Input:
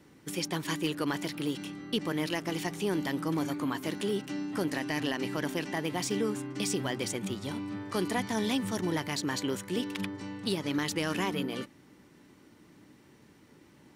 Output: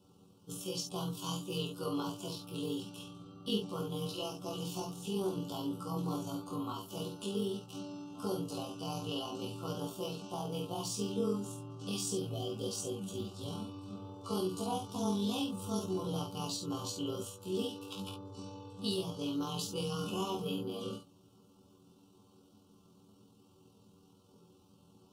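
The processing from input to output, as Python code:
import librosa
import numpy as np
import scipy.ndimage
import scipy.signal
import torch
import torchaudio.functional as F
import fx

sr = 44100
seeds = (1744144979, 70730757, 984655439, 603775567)

p1 = scipy.signal.sosfilt(scipy.signal.ellip(3, 1.0, 80, [1300.0, 2800.0], 'bandstop', fs=sr, output='sos'), x)
p2 = fx.spec_repair(p1, sr, seeds[0], start_s=6.74, length_s=0.63, low_hz=740.0, high_hz=3000.0, source='before')
p3 = fx.notch_comb(p2, sr, f0_hz=310.0)
p4 = fx.stretch_grains(p3, sr, factor=1.8, grain_ms=47.0)
p5 = p4 + fx.room_early_taps(p4, sr, ms=(24, 53, 70), db=(-4.5, -6.0, -10.0), dry=0)
y = F.gain(torch.from_numpy(p5), -4.0).numpy()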